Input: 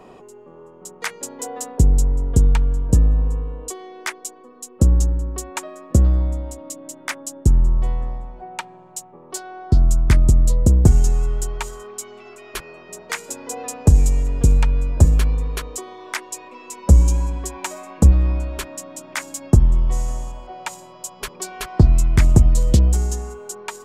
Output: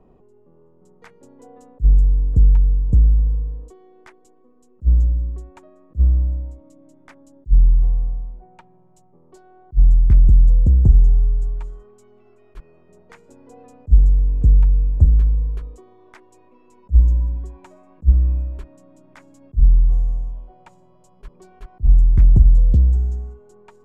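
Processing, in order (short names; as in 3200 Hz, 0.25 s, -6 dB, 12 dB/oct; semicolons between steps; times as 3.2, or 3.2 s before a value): tilt -4.5 dB/oct; attack slew limiter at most 520 dB/s; gain -17 dB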